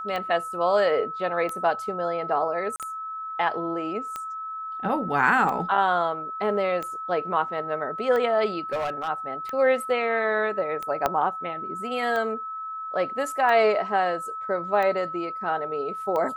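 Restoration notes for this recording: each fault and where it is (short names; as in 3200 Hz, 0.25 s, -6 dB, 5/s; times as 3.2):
tick 45 rpm -18 dBFS
tone 1300 Hz -31 dBFS
2.76–2.8 gap 38 ms
8.72–9.09 clipped -23.5 dBFS
11.06 pop -9 dBFS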